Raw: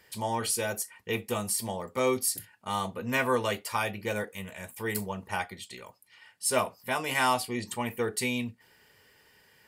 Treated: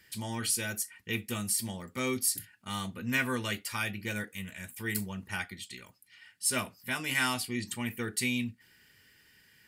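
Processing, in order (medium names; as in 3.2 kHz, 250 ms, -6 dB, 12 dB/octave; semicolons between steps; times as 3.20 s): high-order bell 680 Hz -11.5 dB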